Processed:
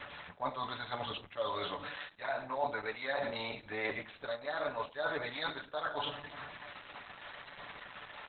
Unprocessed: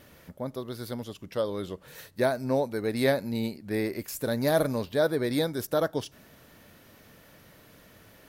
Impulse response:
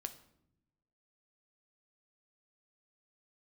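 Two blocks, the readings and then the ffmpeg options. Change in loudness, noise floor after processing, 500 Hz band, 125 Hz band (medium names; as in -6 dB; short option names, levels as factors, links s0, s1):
-10.0 dB, -56 dBFS, -11.0 dB, -17.0 dB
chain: -filter_complex "[1:a]atrim=start_sample=2205[s0];[0:a][s0]afir=irnorm=-1:irlink=0,acrossover=split=330[s1][s2];[s1]asoftclip=type=tanh:threshold=0.0112[s3];[s2]aecho=1:1:6.9:0.81[s4];[s3][s4]amix=inputs=2:normalize=0,lowshelf=f=590:t=q:w=1.5:g=-13,areverse,acompressor=threshold=0.00631:ratio=12,areverse,asplit=2[s5][s6];[s6]adelay=105,volume=0.0501,highshelf=f=4000:g=-2.36[s7];[s5][s7]amix=inputs=2:normalize=0,aphaser=in_gain=1:out_gain=1:delay=4:decay=0.24:speed=0.78:type=sinusoidal,acrusher=bits=5:mode=log:mix=0:aa=0.000001,volume=4.22" -ar 48000 -c:a libopus -b:a 8k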